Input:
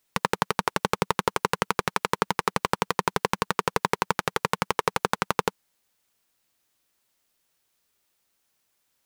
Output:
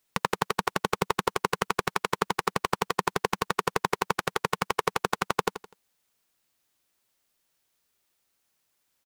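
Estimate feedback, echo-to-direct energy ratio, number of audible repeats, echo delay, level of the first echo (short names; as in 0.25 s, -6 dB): 34%, -11.5 dB, 3, 83 ms, -12.0 dB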